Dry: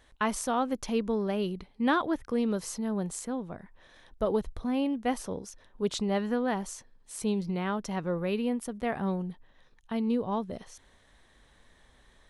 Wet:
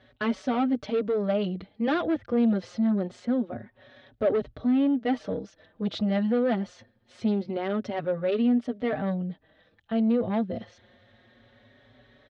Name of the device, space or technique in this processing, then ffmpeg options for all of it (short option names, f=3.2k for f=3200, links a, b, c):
barber-pole flanger into a guitar amplifier: -filter_complex "[0:a]asplit=2[a][b];[b]adelay=4.9,afreqshift=0.25[c];[a][c]amix=inputs=2:normalize=1,asoftclip=type=tanh:threshold=-29dB,highpass=97,equalizer=f=110:t=q:w=4:g=10,equalizer=f=170:t=q:w=4:g=-4,equalizer=f=240:t=q:w=4:g=6,equalizer=f=600:t=q:w=4:g=7,equalizer=f=990:t=q:w=4:g=-10,equalizer=f=2.5k:t=q:w=4:g=-3,lowpass=f=3.9k:w=0.5412,lowpass=f=3.9k:w=1.3066,volume=7.5dB"